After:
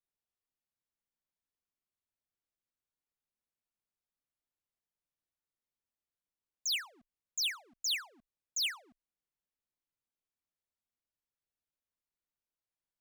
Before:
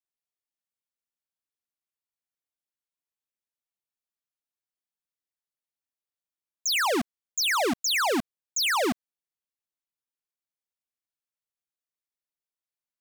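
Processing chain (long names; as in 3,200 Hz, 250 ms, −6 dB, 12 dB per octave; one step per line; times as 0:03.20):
spectral tilt −2 dB per octave
every ending faded ahead of time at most 200 dB per second
level −2 dB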